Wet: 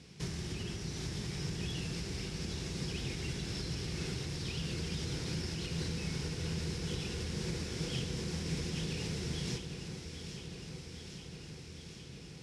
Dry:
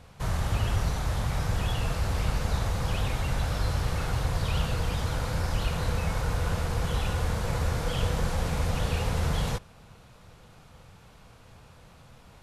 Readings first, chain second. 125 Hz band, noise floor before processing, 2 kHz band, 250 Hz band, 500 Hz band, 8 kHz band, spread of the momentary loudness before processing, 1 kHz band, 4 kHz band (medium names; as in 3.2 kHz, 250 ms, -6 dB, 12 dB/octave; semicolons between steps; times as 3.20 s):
-9.5 dB, -53 dBFS, -8.5 dB, -3.0 dB, -8.5 dB, -3.5 dB, 2 LU, -18.0 dB, -2.5 dB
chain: high-order bell 860 Hz -13.5 dB; compression 5:1, threshold -31 dBFS, peak gain reduction 10 dB; cabinet simulation 100–9700 Hz, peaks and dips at 100 Hz -8 dB, 170 Hz +4 dB, 360 Hz +8 dB, 1.8 kHz -3 dB, 5.3 kHz +9 dB; on a send: echo whose repeats swap between lows and highs 405 ms, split 1.5 kHz, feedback 86%, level -7.5 dB